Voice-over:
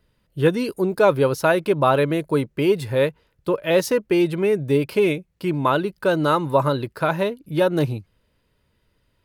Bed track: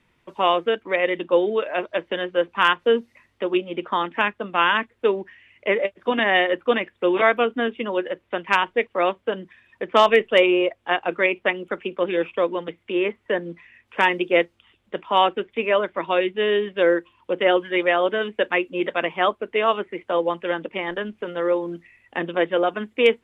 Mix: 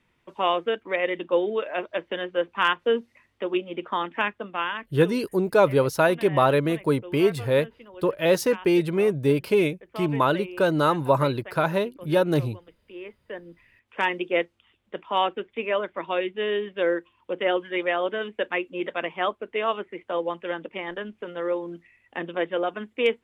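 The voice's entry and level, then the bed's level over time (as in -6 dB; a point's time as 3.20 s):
4.55 s, -2.0 dB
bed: 4.38 s -4 dB
5.18 s -20.5 dB
12.72 s -20.5 dB
14.07 s -5.5 dB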